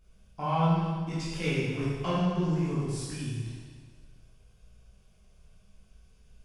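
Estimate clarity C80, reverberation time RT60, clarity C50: 0.5 dB, 1.6 s, −2.5 dB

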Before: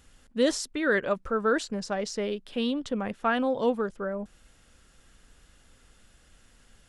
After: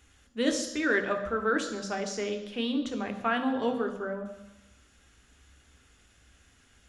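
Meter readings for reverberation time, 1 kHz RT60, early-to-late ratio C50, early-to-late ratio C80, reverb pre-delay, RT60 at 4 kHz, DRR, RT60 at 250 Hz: 1.0 s, 1.1 s, 10.0 dB, 12.0 dB, 3 ms, 1.0 s, 5.5 dB, 0.95 s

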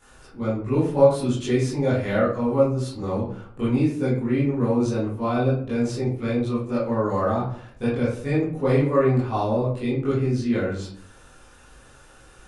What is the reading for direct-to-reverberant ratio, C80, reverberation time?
−11.5 dB, 8.0 dB, 0.60 s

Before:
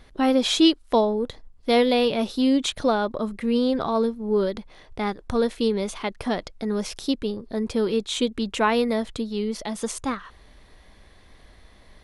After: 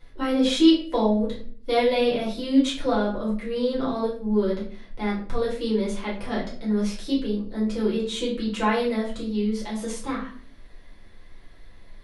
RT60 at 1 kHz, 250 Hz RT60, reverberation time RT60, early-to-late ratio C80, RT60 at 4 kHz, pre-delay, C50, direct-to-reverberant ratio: 0.40 s, 0.70 s, 0.45 s, 11.0 dB, 0.35 s, 4 ms, 6.5 dB, −7.5 dB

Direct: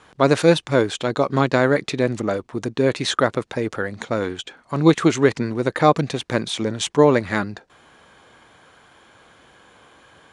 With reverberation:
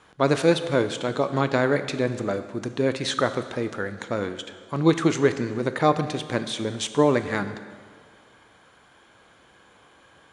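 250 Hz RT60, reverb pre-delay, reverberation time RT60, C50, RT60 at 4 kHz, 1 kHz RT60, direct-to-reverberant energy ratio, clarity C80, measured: 1.7 s, 8 ms, 1.8 s, 11.5 dB, 1.7 s, 1.8 s, 10.0 dB, 12.5 dB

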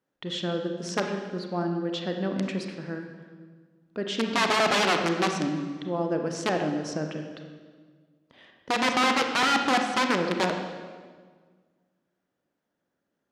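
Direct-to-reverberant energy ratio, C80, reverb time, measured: 4.0 dB, 7.0 dB, 1.6 s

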